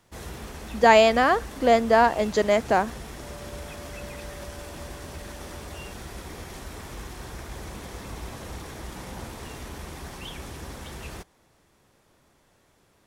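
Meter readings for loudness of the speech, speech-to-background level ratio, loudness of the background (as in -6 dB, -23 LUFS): -20.0 LUFS, 19.0 dB, -39.0 LUFS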